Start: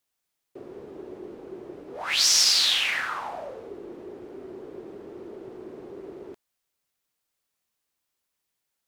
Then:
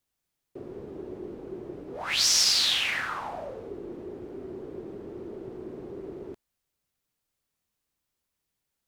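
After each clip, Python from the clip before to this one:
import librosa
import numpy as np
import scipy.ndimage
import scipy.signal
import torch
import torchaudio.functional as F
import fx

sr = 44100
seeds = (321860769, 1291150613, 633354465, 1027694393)

y = fx.low_shelf(x, sr, hz=250.0, db=11.5)
y = y * 10.0 ** (-2.5 / 20.0)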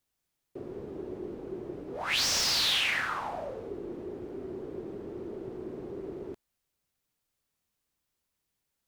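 y = fx.slew_limit(x, sr, full_power_hz=240.0)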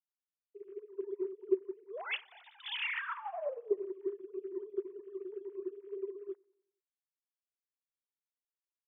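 y = fx.sine_speech(x, sr)
y = fx.echo_feedback(y, sr, ms=93, feedback_pct=55, wet_db=-17.0)
y = fx.upward_expand(y, sr, threshold_db=-41.0, expansion=2.5)
y = y * 10.0 ** (2.5 / 20.0)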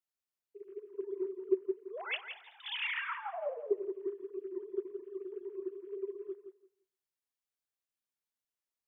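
y = fx.echo_feedback(x, sr, ms=170, feedback_pct=17, wet_db=-9)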